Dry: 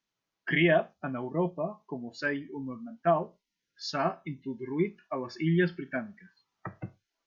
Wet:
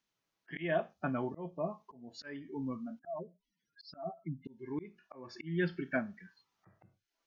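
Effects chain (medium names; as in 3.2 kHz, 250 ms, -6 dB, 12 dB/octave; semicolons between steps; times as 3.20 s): 2.99–4.45 s: spectral contrast enhancement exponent 3; slow attack 421 ms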